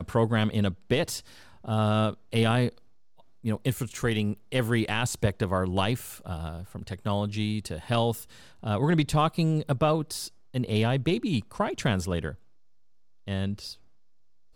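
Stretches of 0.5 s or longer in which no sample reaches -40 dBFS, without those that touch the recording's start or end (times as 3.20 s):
2.69–3.44 s
12.35–13.27 s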